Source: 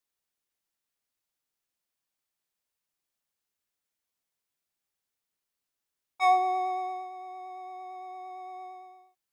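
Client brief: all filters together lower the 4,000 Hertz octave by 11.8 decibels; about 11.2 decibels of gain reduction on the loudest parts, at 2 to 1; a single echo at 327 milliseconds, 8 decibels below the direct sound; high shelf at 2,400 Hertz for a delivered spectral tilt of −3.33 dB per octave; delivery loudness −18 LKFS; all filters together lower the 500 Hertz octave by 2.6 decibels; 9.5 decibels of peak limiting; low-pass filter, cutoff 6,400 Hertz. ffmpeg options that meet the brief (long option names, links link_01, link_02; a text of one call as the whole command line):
ffmpeg -i in.wav -af "lowpass=6400,equalizer=frequency=500:width_type=o:gain=-4,highshelf=frequency=2400:gain=-8,equalizer=frequency=4000:width_type=o:gain=-6,acompressor=threshold=-42dB:ratio=2,alimiter=level_in=12.5dB:limit=-24dB:level=0:latency=1,volume=-12.5dB,aecho=1:1:327:0.398,volume=24.5dB" out.wav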